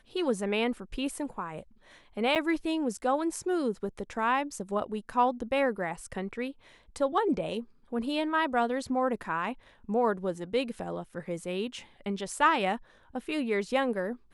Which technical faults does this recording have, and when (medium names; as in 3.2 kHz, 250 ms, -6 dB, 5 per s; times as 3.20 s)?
2.35–2.36 s: dropout 8.4 ms